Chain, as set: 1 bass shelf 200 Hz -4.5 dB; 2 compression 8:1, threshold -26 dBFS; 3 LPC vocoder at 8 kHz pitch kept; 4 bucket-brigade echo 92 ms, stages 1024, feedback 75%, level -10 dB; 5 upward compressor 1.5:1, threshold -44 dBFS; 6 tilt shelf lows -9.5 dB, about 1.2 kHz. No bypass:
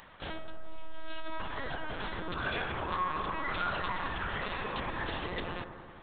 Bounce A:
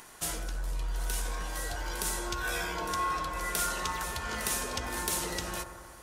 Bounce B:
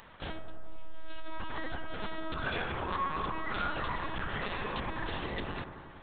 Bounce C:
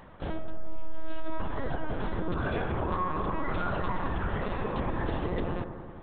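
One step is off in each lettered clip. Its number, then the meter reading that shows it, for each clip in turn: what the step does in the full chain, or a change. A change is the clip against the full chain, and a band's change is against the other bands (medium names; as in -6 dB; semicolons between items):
3, 4 kHz band +3.5 dB; 1, 250 Hz band +2.0 dB; 6, 4 kHz band -13.0 dB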